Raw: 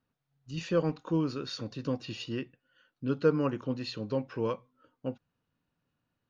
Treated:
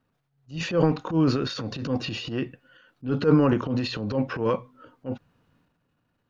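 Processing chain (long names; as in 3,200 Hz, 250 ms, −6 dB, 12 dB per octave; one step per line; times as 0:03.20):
transient designer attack −11 dB, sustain +8 dB
high-shelf EQ 4,100 Hz −9 dB
level +8.5 dB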